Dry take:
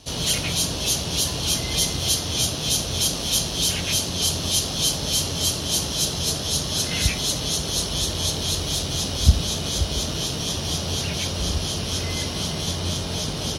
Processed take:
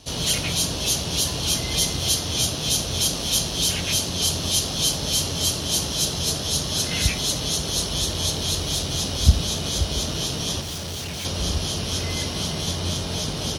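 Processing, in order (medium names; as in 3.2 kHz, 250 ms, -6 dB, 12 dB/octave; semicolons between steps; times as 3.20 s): 10.61–11.25 s: overload inside the chain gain 29 dB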